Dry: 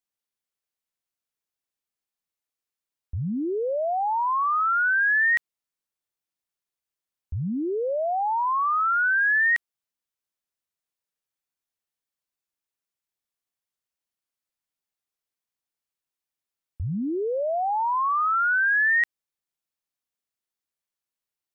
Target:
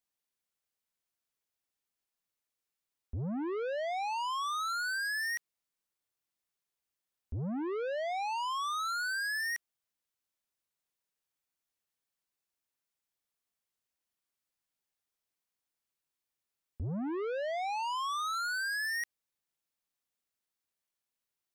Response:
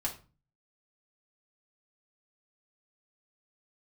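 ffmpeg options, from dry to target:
-af "asoftclip=type=tanh:threshold=0.0211"

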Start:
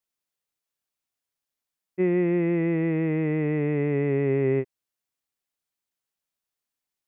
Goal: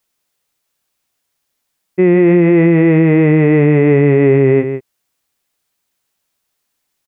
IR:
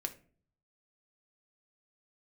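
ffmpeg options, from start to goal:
-af "aecho=1:1:161:0.266,alimiter=level_in=6.68:limit=0.891:release=50:level=0:latency=1,volume=0.891"

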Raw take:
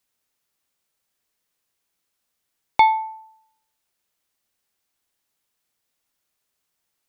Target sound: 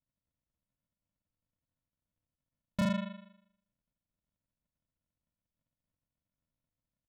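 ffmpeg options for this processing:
-af "bandreject=f=1100:w=25,asetrate=29433,aresample=44100,atempo=1.49831,aresample=8000,acrusher=samples=20:mix=1:aa=0.000001,aresample=44100,asoftclip=type=tanh:threshold=0.112,volume=0.422"

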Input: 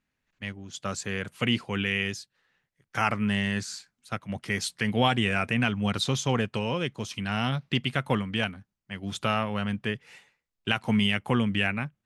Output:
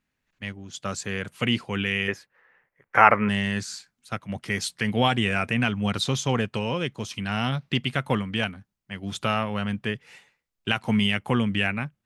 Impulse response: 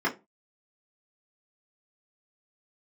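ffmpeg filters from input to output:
-filter_complex "[0:a]asettb=1/sr,asplit=3[s0][s1][s2];[s0]atrim=end=2.084[s3];[s1]atrim=start=2.08:end=3.29,asetpts=PTS-STARTPTS,afade=t=in:d=0.004:c=qsin,afade=t=out:st=1.206:d=0.004:c=qsin,equalizer=f=125:t=o:w=1:g=-3,equalizer=f=500:t=o:w=1:g=10,equalizer=f=1000:t=o:w=1:g=8,equalizer=f=2000:t=o:w=1:g=11,equalizer=f=4000:t=o:w=1:g=-11,equalizer=f=8000:t=o:w=1:g=-10[s4];[s2]atrim=start=3.286[s5];[s3][s4]acrossfade=d=0.004:c1=hsin:c2=qsin[s6];[s6][s5]acrossfade=d=0.004:c1=qsin:c2=hsin,volume=1.19"

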